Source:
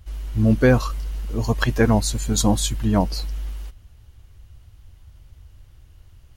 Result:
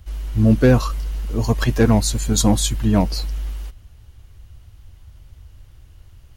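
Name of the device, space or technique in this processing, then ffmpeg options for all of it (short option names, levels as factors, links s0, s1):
one-band saturation: -filter_complex "[0:a]acrossover=split=460|4700[s0][s1][s2];[s1]asoftclip=type=tanh:threshold=0.0891[s3];[s0][s3][s2]amix=inputs=3:normalize=0,volume=1.41"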